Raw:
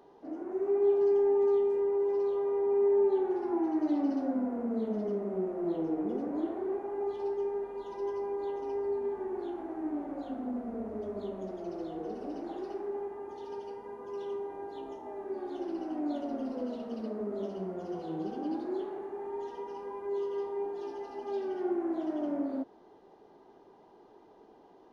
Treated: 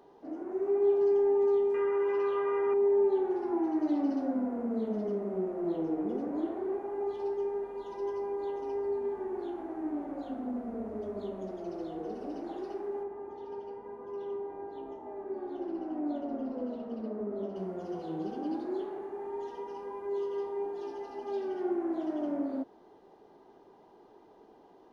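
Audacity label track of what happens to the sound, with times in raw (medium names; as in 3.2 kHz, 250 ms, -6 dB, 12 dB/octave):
1.740000	2.740000	high-order bell 1.8 kHz +15 dB
13.030000	17.560000	low-pass 1.5 kHz 6 dB/octave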